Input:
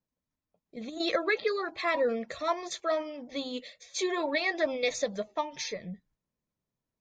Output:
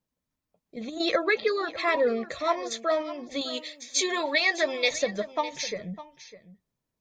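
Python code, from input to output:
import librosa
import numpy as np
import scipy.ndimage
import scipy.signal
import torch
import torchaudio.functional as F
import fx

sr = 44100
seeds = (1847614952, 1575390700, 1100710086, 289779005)

y = fx.tilt_eq(x, sr, slope=2.5, at=(3.41, 4.91))
y = y + 10.0 ** (-15.5 / 20.0) * np.pad(y, (int(604 * sr / 1000.0), 0))[:len(y)]
y = y * 10.0 ** (3.5 / 20.0)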